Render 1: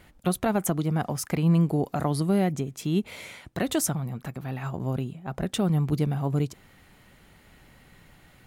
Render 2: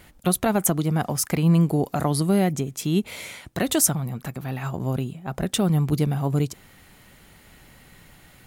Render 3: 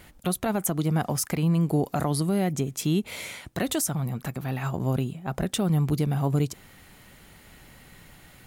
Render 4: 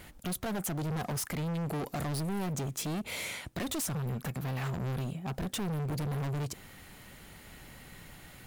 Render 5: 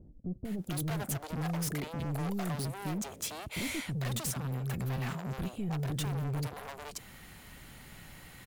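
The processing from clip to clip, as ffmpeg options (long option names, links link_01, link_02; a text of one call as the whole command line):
ffmpeg -i in.wav -af "highshelf=frequency=4800:gain=7,volume=3dB" out.wav
ffmpeg -i in.wav -af "alimiter=limit=-15.5dB:level=0:latency=1:release=165" out.wav
ffmpeg -i in.wav -af "asoftclip=type=hard:threshold=-32dB" out.wav
ffmpeg -i in.wav -filter_complex "[0:a]acrossover=split=450[link_01][link_02];[link_02]adelay=450[link_03];[link_01][link_03]amix=inputs=2:normalize=0,aeval=exprs='0.0398*(abs(mod(val(0)/0.0398+3,4)-2)-1)':channel_layout=same" out.wav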